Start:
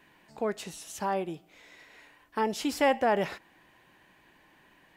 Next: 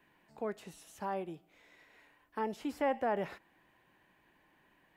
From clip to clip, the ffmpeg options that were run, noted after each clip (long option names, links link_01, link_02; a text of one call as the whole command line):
ffmpeg -i in.wav -filter_complex "[0:a]equalizer=frequency=5700:width=0.65:gain=-5.5,acrossover=split=340|2200[link_01][link_02][link_03];[link_03]alimiter=level_in=16dB:limit=-24dB:level=0:latency=1:release=86,volume=-16dB[link_04];[link_01][link_02][link_04]amix=inputs=3:normalize=0,volume=-7dB" out.wav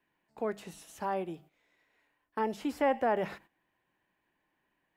ffmpeg -i in.wav -af "bandreject=frequency=50:width_type=h:width=6,bandreject=frequency=100:width_type=h:width=6,bandreject=frequency=150:width_type=h:width=6,bandreject=frequency=200:width_type=h:width=6,agate=range=-14dB:threshold=-58dB:ratio=16:detection=peak,volume=4dB" out.wav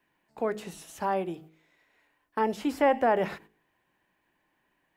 ffmpeg -i in.wav -af "bandreject=frequency=53.12:width_type=h:width=4,bandreject=frequency=106.24:width_type=h:width=4,bandreject=frequency=159.36:width_type=h:width=4,bandreject=frequency=212.48:width_type=h:width=4,bandreject=frequency=265.6:width_type=h:width=4,bandreject=frequency=318.72:width_type=h:width=4,bandreject=frequency=371.84:width_type=h:width=4,bandreject=frequency=424.96:width_type=h:width=4,bandreject=frequency=478.08:width_type=h:width=4,volume=5dB" out.wav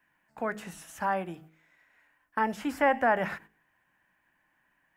ffmpeg -i in.wav -af "equalizer=frequency=400:width_type=o:width=0.67:gain=-9,equalizer=frequency=1600:width_type=o:width=0.67:gain=7,equalizer=frequency=4000:width_type=o:width=0.67:gain=-6" out.wav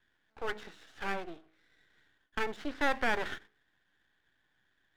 ffmpeg -i in.wav -af "highpass=frequency=260:width=0.5412,highpass=frequency=260:width=1.3066,equalizer=frequency=420:width_type=q:width=4:gain=6,equalizer=frequency=620:width_type=q:width=4:gain=-5,equalizer=frequency=1000:width_type=q:width=4:gain=-9,equalizer=frequency=1500:width_type=q:width=4:gain=5,equalizer=frequency=2500:width_type=q:width=4:gain=-5,equalizer=frequency=3700:width_type=q:width=4:gain=10,lowpass=frequency=4000:width=0.5412,lowpass=frequency=4000:width=1.3066,aeval=exprs='max(val(0),0)':channel_layout=same" out.wav